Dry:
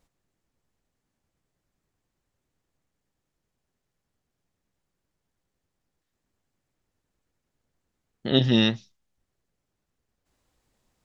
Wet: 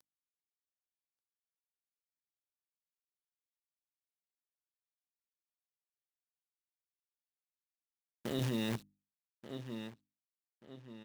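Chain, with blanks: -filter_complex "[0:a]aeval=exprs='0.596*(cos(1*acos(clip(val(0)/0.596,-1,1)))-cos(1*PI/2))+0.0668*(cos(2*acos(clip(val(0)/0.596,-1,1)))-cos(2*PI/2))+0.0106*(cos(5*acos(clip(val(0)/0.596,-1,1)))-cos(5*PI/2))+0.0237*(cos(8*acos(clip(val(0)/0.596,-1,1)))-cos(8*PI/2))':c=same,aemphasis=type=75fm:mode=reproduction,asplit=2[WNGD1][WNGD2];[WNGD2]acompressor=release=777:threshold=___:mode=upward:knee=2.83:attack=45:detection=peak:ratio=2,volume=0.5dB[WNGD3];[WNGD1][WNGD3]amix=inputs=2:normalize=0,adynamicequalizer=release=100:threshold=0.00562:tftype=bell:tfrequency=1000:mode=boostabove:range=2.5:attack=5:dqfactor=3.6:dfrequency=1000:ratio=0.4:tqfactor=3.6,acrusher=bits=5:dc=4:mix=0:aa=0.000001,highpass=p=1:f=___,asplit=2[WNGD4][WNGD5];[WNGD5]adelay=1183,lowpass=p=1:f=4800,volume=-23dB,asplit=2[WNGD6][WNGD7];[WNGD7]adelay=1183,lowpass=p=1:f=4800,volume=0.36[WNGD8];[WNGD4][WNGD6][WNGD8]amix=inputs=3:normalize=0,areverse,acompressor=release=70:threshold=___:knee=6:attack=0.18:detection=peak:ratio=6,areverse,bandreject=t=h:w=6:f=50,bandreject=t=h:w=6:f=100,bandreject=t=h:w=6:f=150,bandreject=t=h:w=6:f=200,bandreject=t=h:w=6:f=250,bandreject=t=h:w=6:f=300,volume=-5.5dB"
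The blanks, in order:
-47dB, 130, -24dB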